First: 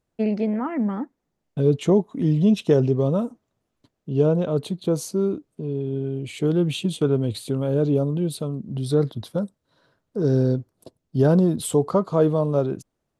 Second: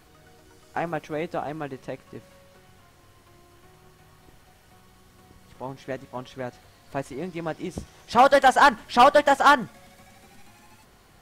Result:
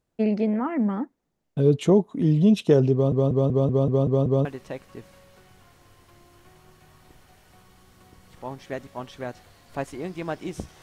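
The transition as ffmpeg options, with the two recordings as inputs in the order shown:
ffmpeg -i cue0.wav -i cue1.wav -filter_complex "[0:a]apad=whole_dur=10.82,atrim=end=10.82,asplit=8[link_01][link_02][link_03][link_04][link_05][link_06][link_07][link_08];[link_01]atrim=end=3.122[link_09];[link_02]atrim=start=2.928:end=3.122[link_10];[link_03]atrim=start=2.928:end=3.122[link_11];[link_04]atrim=start=2.928:end=3.122[link_12];[link_05]atrim=start=2.928:end=3.122[link_13];[link_06]atrim=start=2.928:end=3.122[link_14];[link_07]atrim=start=2.928:end=3.122[link_15];[link_08]atrim=start=2.928:end=3.122[link_16];[1:a]atrim=start=1.628:end=8[link_17];[link_09][link_10]acrossfade=duration=0.004:curve1=hsin:curve2=hsin[link_18];[link_18][link_11]acrossfade=duration=0.004:curve1=hsin:curve2=hsin[link_19];[link_19][link_12]acrossfade=duration=0.004:curve1=hsin:curve2=hsin[link_20];[link_20][link_13]acrossfade=duration=0.004:curve1=hsin:curve2=hsin[link_21];[link_21][link_14]acrossfade=duration=0.004:curve1=hsin:curve2=hsin[link_22];[link_22][link_15]acrossfade=duration=0.004:curve1=hsin:curve2=hsin[link_23];[link_23][link_16]acrossfade=duration=0.004:curve1=hsin:curve2=hsin[link_24];[link_24][link_17]acrossfade=duration=0.004:curve1=hsin:curve2=hsin" out.wav

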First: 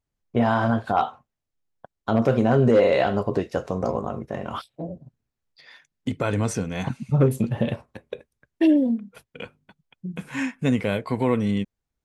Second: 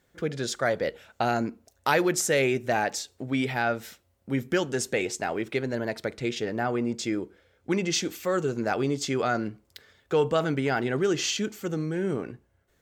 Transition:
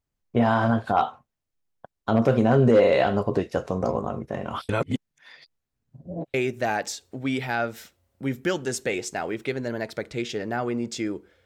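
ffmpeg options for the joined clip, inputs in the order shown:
ffmpeg -i cue0.wav -i cue1.wav -filter_complex "[0:a]apad=whole_dur=11.45,atrim=end=11.45,asplit=2[link_01][link_02];[link_01]atrim=end=4.692[link_03];[link_02]atrim=start=4.688:end=6.342,asetpts=PTS-STARTPTS,areverse[link_04];[1:a]atrim=start=2.408:end=7.52[link_05];[link_03][link_04]acrossfade=duration=0.004:curve1=hsin:curve2=hsin[link_06];[link_06][link_05]acrossfade=duration=0.004:curve1=hsin:curve2=hsin" out.wav

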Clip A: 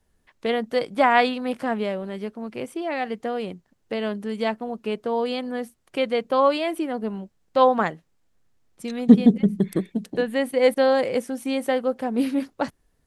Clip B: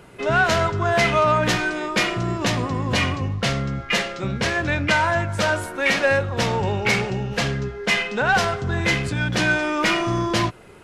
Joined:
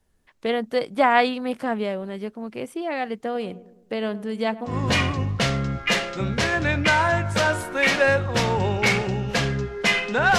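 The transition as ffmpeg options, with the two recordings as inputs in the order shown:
ffmpeg -i cue0.wav -i cue1.wav -filter_complex "[0:a]asettb=1/sr,asplit=3[link_01][link_02][link_03];[link_01]atrim=end=3.144[link_04];[link_02]atrim=start=3.14:end=4.77,asetpts=PTS-STARTPTS,afade=type=in:duration=0.004:curve=qsin,afade=type=out:start_time=1.626:duration=0.004:curve=qsin,asplit=2[link_05][link_06];[link_06]adelay=104,lowpass=frequency=960:poles=1,volume=-15dB,asplit=2[link_07][link_08];[link_08]adelay=104,lowpass=frequency=960:poles=1,volume=0.55,asplit=2[link_09][link_10];[link_10]adelay=104,lowpass=frequency=960:poles=1,volume=0.55,asplit=2[link_11][link_12];[link_12]adelay=104,lowpass=frequency=960:poles=1,volume=0.55,asplit=2[link_13][link_14];[link_14]adelay=104,lowpass=frequency=960:poles=1,volume=0.55[link_15];[link_05][link_07][link_09][link_11][link_13][link_15]amix=inputs=6:normalize=0,atrim=end_sample=71883[link_16];[link_03]atrim=start=4.766[link_17];[link_04][link_16]acrossfade=duration=0.004:curve1=hsin:curve2=qsin[link_18];[link_18][link_17]acrossfade=duration=0.004:curve1=qsin:curve2=hsin,apad=whole_dur=10.38,atrim=end=10.38,atrim=end=4.77,asetpts=PTS-STARTPTS[link_19];[1:a]atrim=start=2.66:end=8.41,asetpts=PTS-STARTPTS[link_20];[link_19][link_20]acrossfade=duration=0.14:curve1=tri:curve2=tri" out.wav

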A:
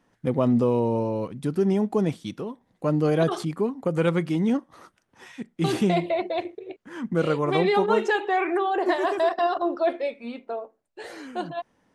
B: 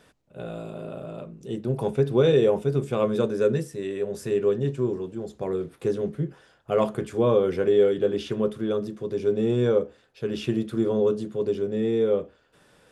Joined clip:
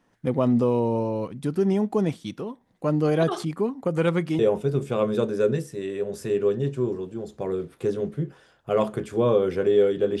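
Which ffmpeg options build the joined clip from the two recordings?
ffmpeg -i cue0.wav -i cue1.wav -filter_complex "[0:a]apad=whole_dur=10.2,atrim=end=10.2,atrim=end=4.392[link_01];[1:a]atrim=start=2.398:end=8.21[link_02];[link_01][link_02]acrossfade=duration=0.004:curve1=hsin:curve2=hsin" out.wav

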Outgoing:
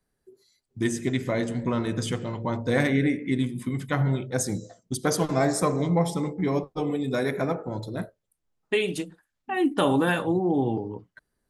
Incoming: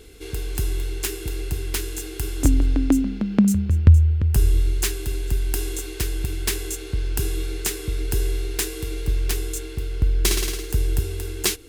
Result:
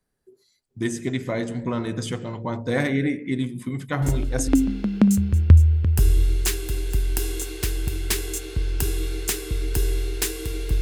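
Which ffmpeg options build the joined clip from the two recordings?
ffmpeg -i cue0.wav -i cue1.wav -filter_complex "[1:a]asplit=2[link_01][link_02];[0:a]apad=whole_dur=10.81,atrim=end=10.81,atrim=end=4.482[link_03];[link_02]atrim=start=2.848:end=9.18[link_04];[link_01]atrim=start=2.39:end=2.85,asetpts=PTS-STARTPTS,volume=-7.5dB,afade=type=in:duration=0.004:curve=hsin,afade=type=out:start_time=0.456:duration=0.004:curve=hsin,adelay=4020[link_05];[link_03][link_04]acrossfade=duration=0.004:curve1=hsin:curve2=hsin[link_06];[link_06][link_05]amix=inputs=2:normalize=0" out.wav

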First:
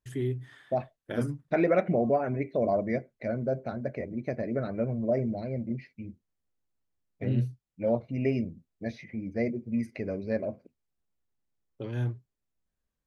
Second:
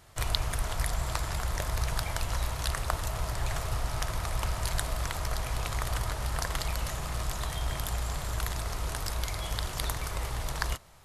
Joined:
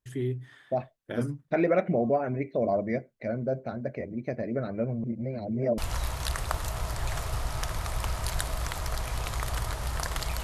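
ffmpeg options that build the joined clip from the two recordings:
ffmpeg -i cue0.wav -i cue1.wav -filter_complex "[0:a]apad=whole_dur=10.43,atrim=end=10.43,asplit=2[link_01][link_02];[link_01]atrim=end=5.042[link_03];[link_02]atrim=start=5.038:end=5.782,asetpts=PTS-STARTPTS,areverse[link_04];[1:a]atrim=start=2.168:end=6.82[link_05];[link_03][link_04]acrossfade=duration=0.004:curve1=hsin:curve2=hsin[link_06];[link_06][link_05]acrossfade=duration=0.004:curve1=hsin:curve2=hsin" out.wav

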